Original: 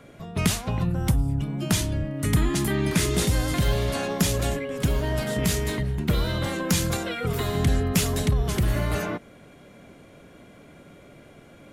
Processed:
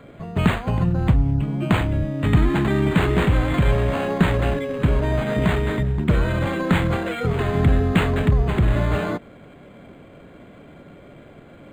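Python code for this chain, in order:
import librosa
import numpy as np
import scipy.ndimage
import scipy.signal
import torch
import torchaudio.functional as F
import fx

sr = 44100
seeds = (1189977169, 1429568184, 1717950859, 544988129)

y = np.interp(np.arange(len(x)), np.arange(len(x))[::8], x[::8])
y = F.gain(torch.from_numpy(y), 5.0).numpy()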